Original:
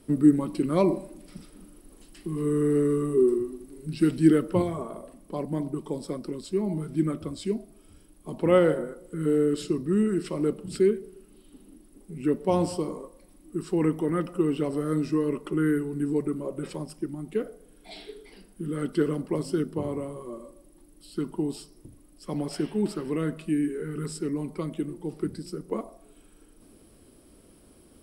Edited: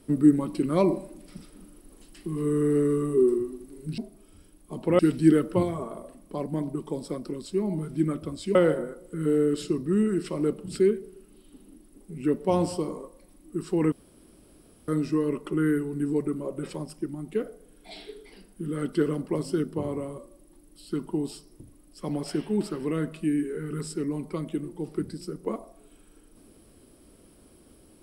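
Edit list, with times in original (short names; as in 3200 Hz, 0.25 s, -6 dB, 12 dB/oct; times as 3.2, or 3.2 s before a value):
7.54–8.55 move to 3.98
13.92–14.88 room tone
20.18–20.43 cut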